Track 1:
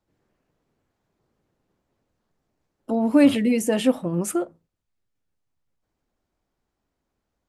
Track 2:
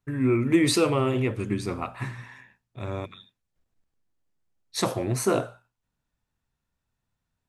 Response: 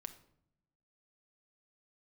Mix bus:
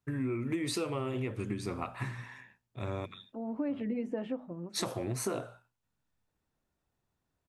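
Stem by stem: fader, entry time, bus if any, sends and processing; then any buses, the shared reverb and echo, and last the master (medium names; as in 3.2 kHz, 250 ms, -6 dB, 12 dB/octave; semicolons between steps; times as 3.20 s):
-7.0 dB, 0.45 s, send -18.5 dB, low-pass 1.6 kHz 12 dB/octave; hum notches 50/100/150/200/250 Hz; auto duck -15 dB, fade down 0.65 s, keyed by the second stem
-2.5 dB, 0.00 s, no send, high-pass 54 Hz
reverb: on, RT60 0.75 s, pre-delay 5 ms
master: compression 6:1, threshold -31 dBFS, peak gain reduction 13 dB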